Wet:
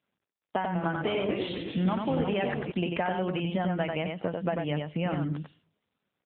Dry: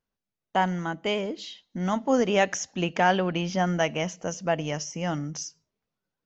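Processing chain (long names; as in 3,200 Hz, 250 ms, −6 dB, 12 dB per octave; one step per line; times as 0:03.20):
downward compressor 16 to 1, threshold −31 dBFS, peak gain reduction 16.5 dB
single-tap delay 94 ms −4 dB
0:00.57–0:02.72: delay with pitch and tempo change per echo 179 ms, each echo −2 semitones, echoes 3, each echo −6 dB
level +5.5 dB
AMR narrowband 7.95 kbit/s 8,000 Hz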